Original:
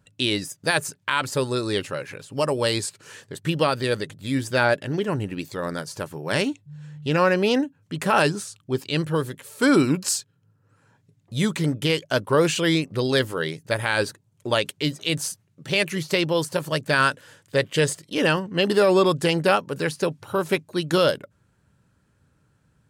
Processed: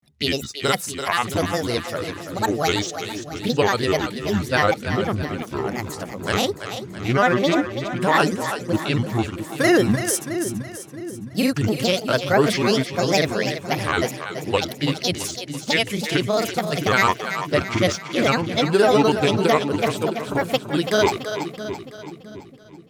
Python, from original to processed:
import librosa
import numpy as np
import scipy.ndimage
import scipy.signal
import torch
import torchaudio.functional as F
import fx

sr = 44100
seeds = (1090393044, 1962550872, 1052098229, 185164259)

y = fx.granulator(x, sr, seeds[0], grain_ms=100.0, per_s=20.0, spray_ms=33.0, spread_st=7)
y = fx.echo_split(y, sr, split_hz=370.0, low_ms=663, high_ms=333, feedback_pct=52, wet_db=-9.0)
y = F.gain(torch.from_numpy(y), 2.5).numpy()